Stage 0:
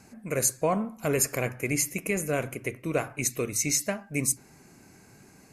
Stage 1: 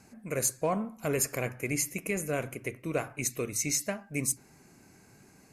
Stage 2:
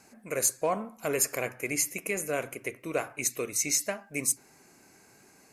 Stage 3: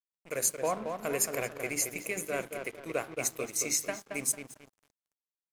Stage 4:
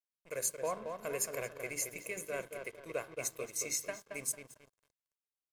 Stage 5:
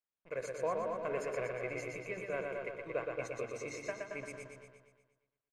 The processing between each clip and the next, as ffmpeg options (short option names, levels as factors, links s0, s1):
-af "asoftclip=type=hard:threshold=0.168,volume=0.668"
-af "bass=f=250:g=-11,treble=f=4000:g=1,volume=1.26"
-filter_complex "[0:a]bandreject=f=50:t=h:w=6,bandreject=f=100:t=h:w=6,bandreject=f=150:t=h:w=6,bandreject=f=200:t=h:w=6,bandreject=f=250:t=h:w=6,bandreject=f=300:t=h:w=6,bandreject=f=350:t=h:w=6,bandreject=f=400:t=h:w=6,asplit=2[s0][s1];[s1]adelay=224,lowpass=f=1700:p=1,volume=0.596,asplit=2[s2][s3];[s3]adelay=224,lowpass=f=1700:p=1,volume=0.47,asplit=2[s4][s5];[s5]adelay=224,lowpass=f=1700:p=1,volume=0.47,asplit=2[s6][s7];[s7]adelay=224,lowpass=f=1700:p=1,volume=0.47,asplit=2[s8][s9];[s9]adelay=224,lowpass=f=1700:p=1,volume=0.47,asplit=2[s10][s11];[s11]adelay=224,lowpass=f=1700:p=1,volume=0.47[s12];[s0][s2][s4][s6][s8][s10][s12]amix=inputs=7:normalize=0,aeval=exprs='sgn(val(0))*max(abs(val(0))-0.00531,0)':c=same,volume=0.794"
-af "aecho=1:1:1.9:0.4,volume=0.447"
-filter_complex "[0:a]lowpass=2300,asplit=2[s0][s1];[s1]aecho=0:1:120|240|360|480|600|720|840:0.631|0.341|0.184|0.0994|0.0537|0.029|0.0156[s2];[s0][s2]amix=inputs=2:normalize=0,volume=1.12"